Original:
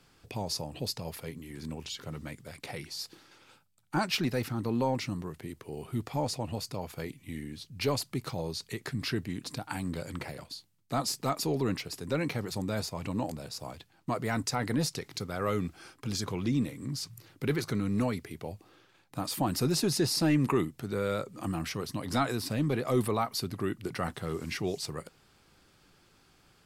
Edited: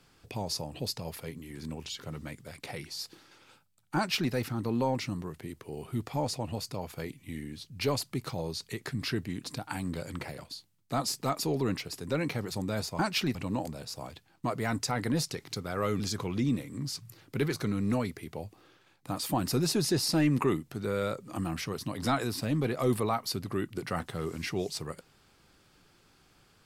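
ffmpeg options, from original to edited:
ffmpeg -i in.wav -filter_complex "[0:a]asplit=4[link_01][link_02][link_03][link_04];[link_01]atrim=end=12.992[link_05];[link_02]atrim=start=3.958:end=4.322[link_06];[link_03]atrim=start=12.988:end=15.642[link_07];[link_04]atrim=start=16.078[link_08];[link_05][link_06]acrossfade=duration=0.004:curve1=hsin:curve2=hsin[link_09];[link_09][link_07]acrossfade=duration=0.004:curve1=hsin:curve2=hsin[link_10];[link_10][link_08]acrossfade=duration=0.004:curve1=hsin:curve2=hsin" out.wav

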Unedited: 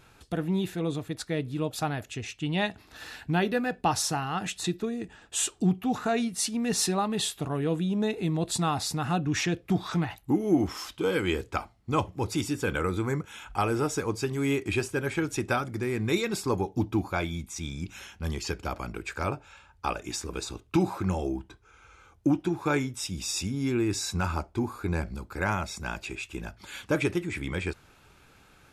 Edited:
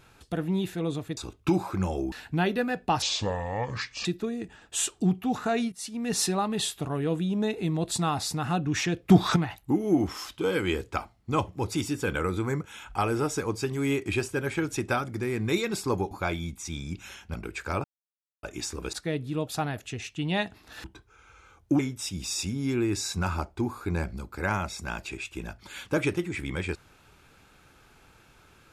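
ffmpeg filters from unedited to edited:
ffmpeg -i in.wav -filter_complex "[0:a]asplit=15[link_01][link_02][link_03][link_04][link_05][link_06][link_07][link_08][link_09][link_10][link_11][link_12][link_13][link_14][link_15];[link_01]atrim=end=1.172[link_16];[link_02]atrim=start=20.438:end=21.392[link_17];[link_03]atrim=start=3.078:end=3.984[link_18];[link_04]atrim=start=3.98:end=4.65,asetpts=PTS-STARTPTS,asetrate=28665,aresample=44100[link_19];[link_05]atrim=start=4.646:end=6.32,asetpts=PTS-STARTPTS,afade=type=out:start_time=1.67:duration=0.004:curve=hsin:silence=0.158489[link_20];[link_06]atrim=start=6.32:end=9.692,asetpts=PTS-STARTPTS,afade=type=in:duration=0.45:silence=0.158489[link_21];[link_07]atrim=start=9.688:end=9.962,asetpts=PTS-STARTPTS,volume=9dB[link_22];[link_08]atrim=start=9.958:end=16.712[link_23];[link_09]atrim=start=17.018:end=18.252[link_24];[link_10]atrim=start=18.848:end=19.35,asetpts=PTS-STARTPTS,afade=type=out:start_time=0.498:duration=0.004:curve=hsin[link_25];[link_11]atrim=start=19.35:end=19.94,asetpts=PTS-STARTPTS,volume=0[link_26];[link_12]atrim=start=19.94:end=20.442,asetpts=PTS-STARTPTS,afade=type=in:duration=0.004:curve=hsin[link_27];[link_13]atrim=start=1.168:end=3.082[link_28];[link_14]atrim=start=21.388:end=22.342[link_29];[link_15]atrim=start=22.768[link_30];[link_16][link_17]acrossfade=duration=0.004:curve1=hsin:curve2=hsin[link_31];[link_31][link_18]acrossfade=duration=0.004:curve1=hsin:curve2=hsin[link_32];[link_32][link_19]acrossfade=duration=0.004:curve1=hsin:curve2=hsin[link_33];[link_20][link_21]concat=n=2:v=0:a=1[link_34];[link_33][link_34]acrossfade=duration=0.004:curve1=hsin:curve2=hsin[link_35];[link_35][link_22]acrossfade=duration=0.004:curve1=hsin:curve2=hsin[link_36];[link_36][link_23]acrossfade=duration=0.004:curve1=hsin:curve2=hsin[link_37];[link_37][link_24]acrossfade=duration=0.004:curve1=hsin:curve2=hsin[link_38];[link_25][link_26][link_27]concat=n=3:v=0:a=1[link_39];[link_38][link_39]acrossfade=duration=0.004:curve1=hsin:curve2=hsin[link_40];[link_40][link_28]acrossfade=duration=0.004:curve1=hsin:curve2=hsin[link_41];[link_41][link_29]acrossfade=duration=0.004:curve1=hsin:curve2=hsin[link_42];[link_42][link_30]acrossfade=duration=0.004:curve1=hsin:curve2=hsin" out.wav

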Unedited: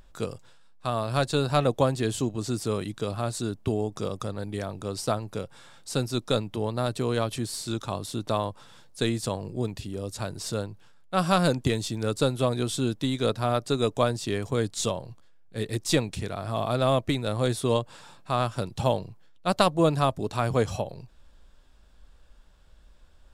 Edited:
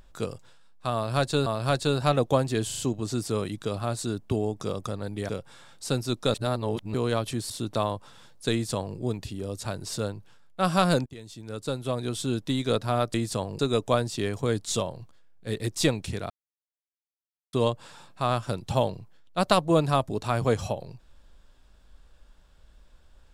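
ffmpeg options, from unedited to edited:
ffmpeg -i in.wav -filter_complex "[0:a]asplit=14[link_01][link_02][link_03][link_04][link_05][link_06][link_07][link_08][link_09][link_10][link_11][link_12][link_13][link_14];[link_01]atrim=end=1.462[link_15];[link_02]atrim=start=0.938:end=2.192[link_16];[link_03]atrim=start=2.148:end=2.192[link_17];[link_04]atrim=start=2.148:end=2.192[link_18];[link_05]atrim=start=2.148:end=4.652[link_19];[link_06]atrim=start=5.338:end=6.392[link_20];[link_07]atrim=start=6.388:end=6.992,asetpts=PTS-STARTPTS,areverse[link_21];[link_08]atrim=start=6.988:end=7.552[link_22];[link_09]atrim=start=8.038:end=11.6,asetpts=PTS-STARTPTS,afade=type=out:start_time=3.558:duration=0.004:curve=hsin:silence=0.0630957[link_23];[link_10]atrim=start=11.6:end=13.682,asetpts=PTS-STARTPTS,afade=type=in:duration=1.48:silence=0.0630957[link_24];[link_11]atrim=start=9.058:end=9.512[link_25];[link_12]atrim=start=13.678:end=16.39,asetpts=PTS-STARTPTS,afade=type=out:start_time=2.708:duration=0.004:curve=hsin[link_26];[link_13]atrim=start=16.39:end=17.62,asetpts=PTS-STARTPTS,volume=0[link_27];[link_14]atrim=start=17.62,asetpts=PTS-STARTPTS,afade=type=in:duration=0.004:curve=hsin[link_28];[link_15][link_16]acrossfade=duration=0.004:curve1=hsin:curve2=hsin[link_29];[link_29][link_17]acrossfade=duration=0.004:curve1=hsin:curve2=hsin[link_30];[link_30][link_18]acrossfade=duration=0.004:curve1=hsin:curve2=hsin[link_31];[link_31][link_19]acrossfade=duration=0.004:curve1=hsin:curve2=hsin[link_32];[link_32][link_20]acrossfade=duration=0.004:curve1=hsin:curve2=hsin[link_33];[link_33][link_21]acrossfade=duration=0.004:curve1=hsin:curve2=hsin[link_34];[link_34][link_22]acrossfade=duration=0.004:curve1=hsin:curve2=hsin[link_35];[link_23][link_24]concat=n=2:v=0:a=1[link_36];[link_35][link_36]acrossfade=duration=0.004:curve1=hsin:curve2=hsin[link_37];[link_37][link_25]acrossfade=duration=0.004:curve1=hsin:curve2=hsin[link_38];[link_26][link_27][link_28]concat=n=3:v=0:a=1[link_39];[link_38][link_39]acrossfade=duration=0.004:curve1=hsin:curve2=hsin" out.wav

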